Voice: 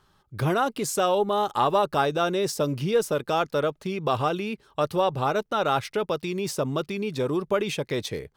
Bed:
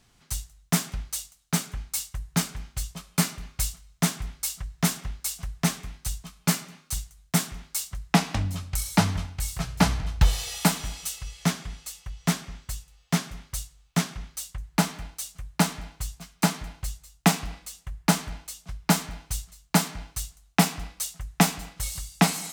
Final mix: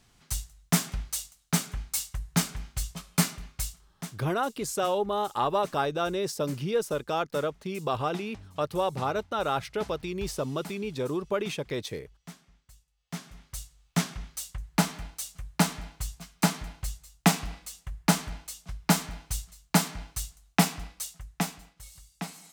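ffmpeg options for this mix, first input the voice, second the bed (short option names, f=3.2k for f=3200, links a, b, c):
-filter_complex "[0:a]adelay=3800,volume=-4.5dB[a];[1:a]volume=19.5dB,afade=t=out:st=3.16:d=0.99:silence=0.0891251,afade=t=in:st=12.95:d=1.11:silence=0.1,afade=t=out:st=20.52:d=1.23:silence=0.177828[b];[a][b]amix=inputs=2:normalize=0"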